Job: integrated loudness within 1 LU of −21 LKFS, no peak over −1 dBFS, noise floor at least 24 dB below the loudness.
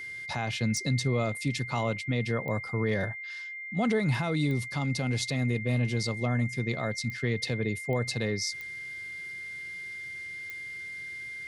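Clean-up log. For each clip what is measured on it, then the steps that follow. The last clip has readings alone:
number of clicks 7; interfering tone 2,100 Hz; level of the tone −37 dBFS; integrated loudness −30.5 LKFS; sample peak −18.0 dBFS; target loudness −21.0 LKFS
→ click removal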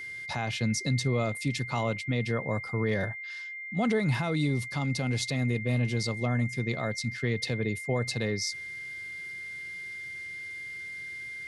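number of clicks 0; interfering tone 2,100 Hz; level of the tone −37 dBFS
→ notch filter 2,100 Hz, Q 30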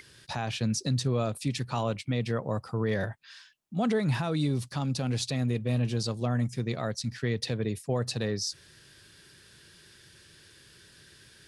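interfering tone none found; integrated loudness −30.5 LKFS; sample peak −18.5 dBFS; target loudness −21.0 LKFS
→ level +9.5 dB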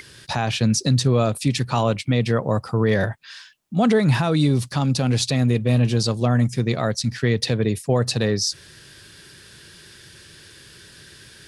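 integrated loudness −21.0 LKFS; sample peak −9.0 dBFS; background noise floor −47 dBFS

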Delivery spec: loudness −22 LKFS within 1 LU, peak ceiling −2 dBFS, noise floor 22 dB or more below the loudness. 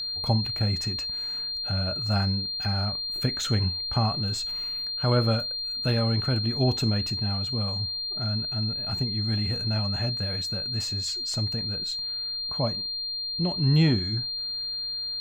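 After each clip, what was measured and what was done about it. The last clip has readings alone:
interfering tone 4,200 Hz; level of the tone −29 dBFS; integrated loudness −26.5 LKFS; sample peak −10.0 dBFS; target loudness −22.0 LKFS
→ notch filter 4,200 Hz, Q 30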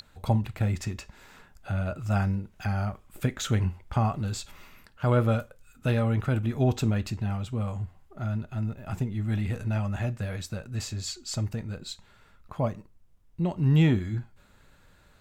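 interfering tone none found; integrated loudness −29.0 LKFS; sample peak −11.0 dBFS; target loudness −22.0 LKFS
→ level +7 dB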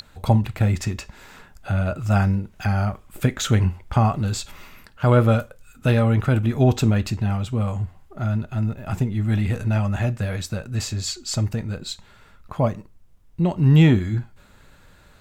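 integrated loudness −22.0 LKFS; sample peak −4.0 dBFS; background noise floor −52 dBFS

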